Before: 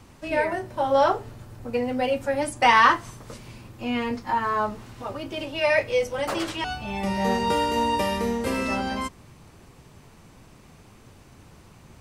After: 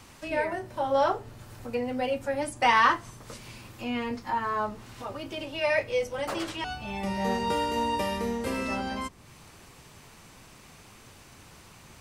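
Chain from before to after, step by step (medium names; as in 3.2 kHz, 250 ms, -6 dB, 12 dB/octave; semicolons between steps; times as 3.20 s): tape noise reduction on one side only encoder only; trim -4.5 dB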